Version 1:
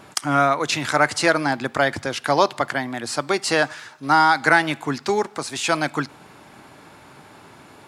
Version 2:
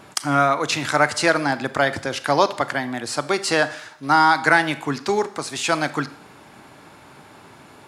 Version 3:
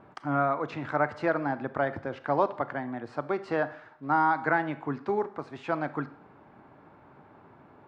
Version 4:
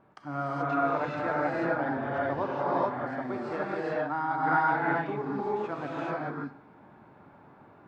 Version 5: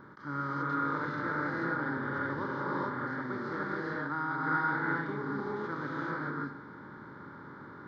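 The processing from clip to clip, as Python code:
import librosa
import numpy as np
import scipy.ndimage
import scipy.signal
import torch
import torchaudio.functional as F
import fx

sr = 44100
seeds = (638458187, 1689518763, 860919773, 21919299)

y1 = fx.rev_schroeder(x, sr, rt60_s=0.62, comb_ms=28, drr_db=14.0)
y2 = scipy.signal.sosfilt(scipy.signal.butter(2, 1300.0, 'lowpass', fs=sr, output='sos'), y1)
y2 = F.gain(torch.from_numpy(y2), -7.0).numpy()
y3 = fx.rev_gated(y2, sr, seeds[0], gate_ms=460, shape='rising', drr_db=-7.0)
y3 = F.gain(torch.from_numpy(y3), -8.0).numpy()
y4 = fx.bin_compress(y3, sr, power=0.6)
y4 = fx.fixed_phaser(y4, sr, hz=2600.0, stages=6)
y4 = fx.attack_slew(y4, sr, db_per_s=240.0)
y4 = F.gain(torch.from_numpy(y4), -3.5).numpy()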